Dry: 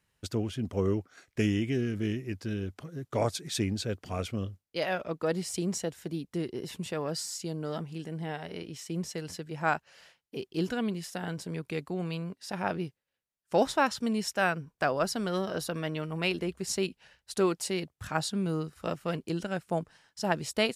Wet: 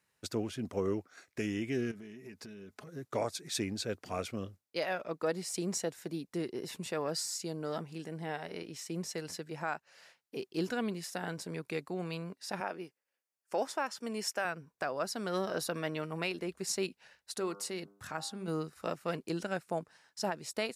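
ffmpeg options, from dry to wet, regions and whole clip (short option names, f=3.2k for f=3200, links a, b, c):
-filter_complex "[0:a]asettb=1/sr,asplit=3[a][b][c];[a]atrim=end=1.914[d];[b]atrim=start=1.91:end=2.87,asetpts=PTS-STARTPTS,afade=t=in:d=0.004:c=qsin,afade=t=out:st=0.956:d=0.004:c=qsin,aecho=1:1:4.7:0.49,atrim=end_sample=42336,acompressor=threshold=-40dB:ratio=16:attack=3.2:release=140:knee=1:detection=peak[e];[c]atrim=start=2.866[f];[d][e]acrossfade=d=0.004:c1=hsin:c2=qsin[g];[g][f]acrossfade=d=0.004:c1=qsin:c2=hsin,asettb=1/sr,asplit=3[h][i][j];[h]atrim=end=12.604[k];[i]atrim=start=12.6:end=14.45,asetpts=PTS-STARTPTS,afade=t=in:d=0.004:c=qsin,afade=t=out:st=1.846:d=0.004:c=qsin,highpass=260,bandreject=f=3.9k:w=6.4[l];[j]atrim=start=14.446[m];[k][l]acrossfade=d=0.004:c1=hsin:c2=qsin[n];[n][m]acrossfade=d=0.004:c1=qsin:c2=hsin,asettb=1/sr,asplit=3[o][p][q];[o]atrim=end=17.314[r];[p]atrim=start=17.31:end=18.48,asetpts=PTS-STARTPTS,afade=t=in:d=0.004:c=qsin,afade=t=out:st=1.166:d=0.004:c=qsin,bandreject=f=2.4k:w=21,bandreject=f=99.92:t=h:w=4,bandreject=f=199.84:t=h:w=4,bandreject=f=299.76:t=h:w=4,bandreject=f=399.68:t=h:w=4,bandreject=f=499.6:t=h:w=4,bandreject=f=599.52:t=h:w=4,bandreject=f=699.44:t=h:w=4,bandreject=f=799.36:t=h:w=4,bandreject=f=899.28:t=h:w=4,bandreject=f=999.2:t=h:w=4,bandreject=f=1.09912k:t=h:w=4,bandreject=f=1.19904k:t=h:w=4,bandreject=f=1.29896k:t=h:w=4,bandreject=f=1.39888k:t=h:w=4,bandreject=f=1.4988k:t=h:w=4,acompressor=threshold=-41dB:ratio=1.5:attack=3.2:release=140:knee=1:detection=peak[s];[q]atrim=start=18.476[t];[r][s]acrossfade=d=0.004:c1=hsin:c2=qsin[u];[u][t]acrossfade=d=0.004:c1=qsin:c2=hsin,highpass=f=290:p=1,equalizer=f=3.1k:t=o:w=0.26:g=-6,alimiter=limit=-22dB:level=0:latency=1:release=400"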